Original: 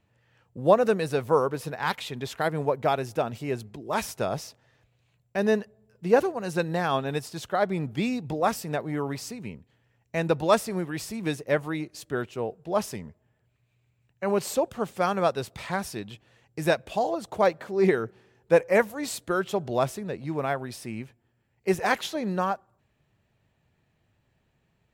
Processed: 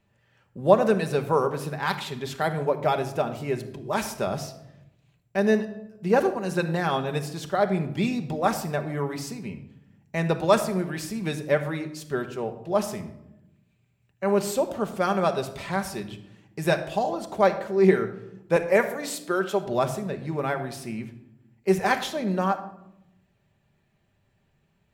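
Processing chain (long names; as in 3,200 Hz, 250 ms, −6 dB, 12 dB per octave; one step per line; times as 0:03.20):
0:18.56–0:19.67: high-pass filter 220 Hz 12 dB per octave
on a send: convolution reverb RT60 0.85 s, pre-delay 5 ms, DRR 5.5 dB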